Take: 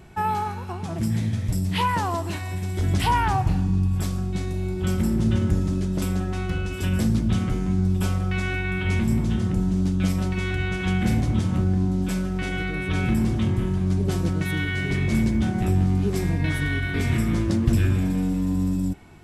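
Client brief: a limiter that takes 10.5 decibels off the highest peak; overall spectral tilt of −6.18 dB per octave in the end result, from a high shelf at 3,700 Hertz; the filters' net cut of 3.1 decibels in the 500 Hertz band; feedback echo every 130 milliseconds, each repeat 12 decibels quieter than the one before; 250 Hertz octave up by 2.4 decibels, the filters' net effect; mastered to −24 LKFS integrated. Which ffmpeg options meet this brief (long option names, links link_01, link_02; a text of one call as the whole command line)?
ffmpeg -i in.wav -af "equalizer=frequency=250:width_type=o:gain=5,equalizer=frequency=500:width_type=o:gain=-8.5,highshelf=frequency=3700:gain=7,alimiter=limit=-15.5dB:level=0:latency=1,aecho=1:1:130|260|390:0.251|0.0628|0.0157" out.wav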